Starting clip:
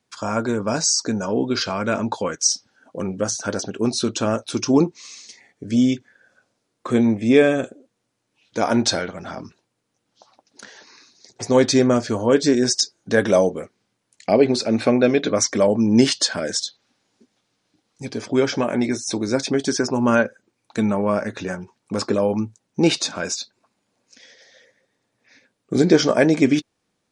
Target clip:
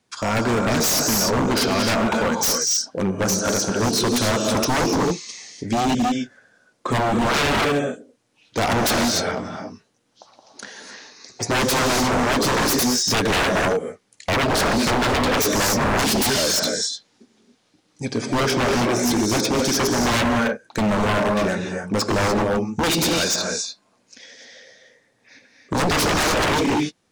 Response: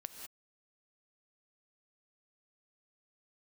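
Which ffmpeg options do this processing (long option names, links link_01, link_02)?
-filter_complex "[1:a]atrim=start_sample=2205,asetrate=29988,aresample=44100[link_01];[0:a][link_01]afir=irnorm=-1:irlink=0,aeval=exprs='0.0794*(abs(mod(val(0)/0.0794+3,4)-2)-1)':channel_layout=same,volume=7.5dB"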